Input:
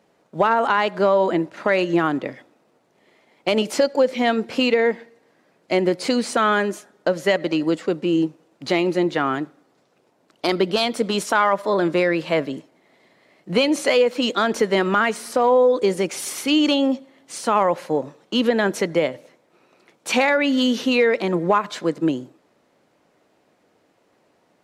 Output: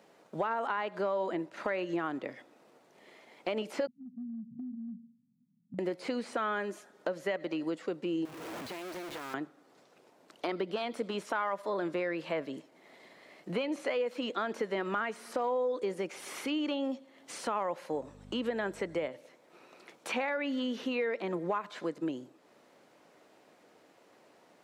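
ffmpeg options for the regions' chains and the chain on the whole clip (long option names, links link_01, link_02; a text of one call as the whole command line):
ffmpeg -i in.wav -filter_complex "[0:a]asettb=1/sr,asplit=3[link_01][link_02][link_03];[link_01]atrim=end=3.874[link_04];[link_02]atrim=start=3.87:end=5.79,asetpts=PTS-STARTPTS,afade=type=in:duration=0.004:curve=qsin,afade=type=out:start_time=1.916:duration=0.004:curve=qsin,asuperpass=centerf=170:order=20:qfactor=1.2,acompressor=threshold=-32dB:ratio=6:attack=3.2:release=140:knee=1:detection=peak[link_05];[link_03]atrim=start=5.786[link_06];[link_04][link_05]acrossfade=duration=0.004:curve1=hsin:curve2=qsin[link_07];[link_07][link_06]acrossfade=duration=0.004:curve1=qsin:curve2=hsin,asettb=1/sr,asplit=3[link_08][link_09][link_10];[link_08]atrim=end=8.254[link_11];[link_09]atrim=start=8.25:end=9.34,asetpts=PTS-STARTPTS,afade=type=in:duration=0.004:curve=qsin,afade=type=out:start_time=1.086:duration=0.004:curve=qsin,aeval=exprs='val(0)+0.5*0.0708*sgn(val(0))':channel_layout=same,acompressor=threshold=-29dB:ratio=8:attack=3.2:release=140:knee=1:detection=peak,acrusher=bits=3:dc=4:mix=0:aa=0.000001[link_12];[link_10]atrim=start=9.336[link_13];[link_11][link_12]acrossfade=duration=0.004:curve1=hsin:curve2=qsin[link_14];[link_14][link_13]acrossfade=duration=0.004:curve1=qsin:curve2=hsin,asettb=1/sr,asplit=3[link_15][link_16][link_17];[link_15]atrim=end=17.934[link_18];[link_16]atrim=start=17.93:end=19.08,asetpts=PTS-STARTPTS,afade=type=in:duration=0.004:curve=qsin,afade=type=out:start_time=1.146:duration=0.004:curve=qsin,equalizer=frequency=8000:width=7.1:gain=12,aeval=exprs='val(0)+0.0141*(sin(2*PI*50*n/s)+sin(2*PI*2*50*n/s)/2+sin(2*PI*3*50*n/s)/3+sin(2*PI*4*50*n/s)/4+sin(2*PI*5*50*n/s)/5)':channel_layout=same[link_19];[link_17]atrim=start=19.076[link_20];[link_18][link_19]acrossfade=duration=0.004:curve1=hsin:curve2=qsin[link_21];[link_21][link_20]acrossfade=duration=0.004:curve1=qsin:curve2=hsin,acrossover=split=2900[link_22][link_23];[link_23]acompressor=threshold=-43dB:ratio=4:attack=1:release=60[link_24];[link_22][link_24]amix=inputs=2:normalize=0,highpass=frequency=250:poles=1,acompressor=threshold=-44dB:ratio=2,volume=1.5dB" out.wav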